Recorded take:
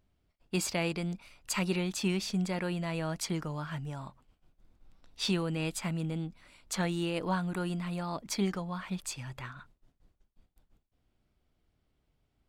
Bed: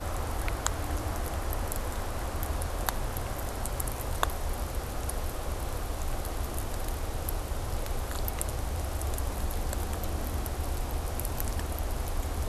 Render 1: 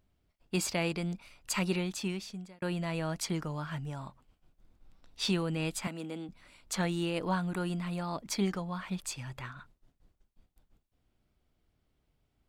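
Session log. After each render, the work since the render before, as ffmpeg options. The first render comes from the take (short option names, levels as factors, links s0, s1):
-filter_complex "[0:a]asettb=1/sr,asplit=3[s0][s1][s2];[s0]atrim=end=5.874[s3];[s1]atrim=start=5.87:end=6.29,asetpts=PTS-STARTPTS,afade=t=in:d=0.004:c=qsin,afade=t=out:st=0.416:d=0.004:c=qsin,highpass=f=230:w=0.5412,highpass=f=230:w=1.3066[s4];[s2]atrim=start=6.286[s5];[s3][s4]acrossfade=d=0.004:c1=hsin:c2=qsin[s6];[s6][s5]acrossfade=d=0.004:c1=qsin:c2=hsin,asplit=2[s7][s8];[s7]atrim=end=2.62,asetpts=PTS-STARTPTS,afade=t=out:st=1.72:d=0.9[s9];[s8]atrim=start=2.62,asetpts=PTS-STARTPTS,afade=t=in:d=0.004:c=hsin[s10];[s9][s10]concat=n=2:v=0:a=1"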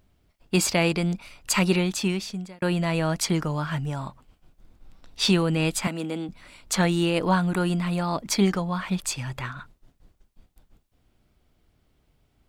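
-af "volume=2.99"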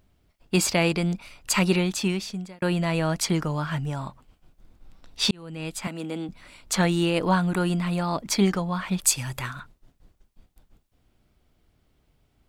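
-filter_complex "[0:a]asplit=3[s0][s1][s2];[s0]afade=t=out:st=9.02:d=0.02[s3];[s1]equalizer=f=12000:w=0.47:g=13.5,afade=t=in:st=9.02:d=0.02,afade=t=out:st=9.59:d=0.02[s4];[s2]afade=t=in:st=9.59:d=0.02[s5];[s3][s4][s5]amix=inputs=3:normalize=0,asplit=2[s6][s7];[s6]atrim=end=5.31,asetpts=PTS-STARTPTS,afade=t=out:st=5.306:d=0.004:c=hsin[s8];[s7]atrim=start=5.31,asetpts=PTS-STARTPTS,afade=t=in:d=0.96[s9];[s8][s9]concat=n=2:v=0:a=1"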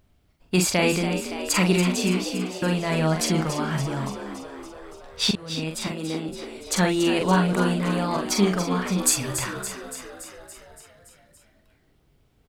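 -filter_complex "[0:a]asplit=2[s0][s1];[s1]adelay=44,volume=0.562[s2];[s0][s2]amix=inputs=2:normalize=0,asplit=9[s3][s4][s5][s6][s7][s8][s9][s10][s11];[s4]adelay=284,afreqshift=64,volume=0.335[s12];[s5]adelay=568,afreqshift=128,volume=0.214[s13];[s6]adelay=852,afreqshift=192,volume=0.136[s14];[s7]adelay=1136,afreqshift=256,volume=0.0881[s15];[s8]adelay=1420,afreqshift=320,volume=0.0562[s16];[s9]adelay=1704,afreqshift=384,volume=0.0359[s17];[s10]adelay=1988,afreqshift=448,volume=0.0229[s18];[s11]adelay=2272,afreqshift=512,volume=0.0148[s19];[s3][s12][s13][s14][s15][s16][s17][s18][s19]amix=inputs=9:normalize=0"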